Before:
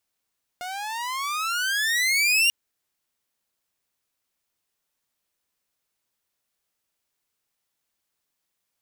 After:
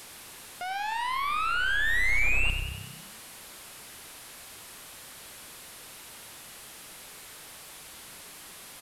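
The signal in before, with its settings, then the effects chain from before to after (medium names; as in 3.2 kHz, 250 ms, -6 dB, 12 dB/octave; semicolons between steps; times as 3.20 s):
gliding synth tone saw, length 1.89 s, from 709 Hz, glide +24 st, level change +15 dB, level -13.5 dB
one-bit delta coder 64 kbps, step -38.5 dBFS; frequency-shifting echo 94 ms, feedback 56%, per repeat +32 Hz, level -8 dB; dynamic bell 6.1 kHz, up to -7 dB, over -52 dBFS, Q 1.5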